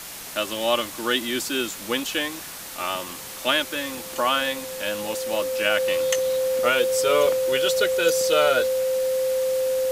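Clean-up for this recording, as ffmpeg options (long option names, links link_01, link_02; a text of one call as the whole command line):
ffmpeg -i in.wav -af "bandreject=frequency=520:width=30,afwtdn=0.016" out.wav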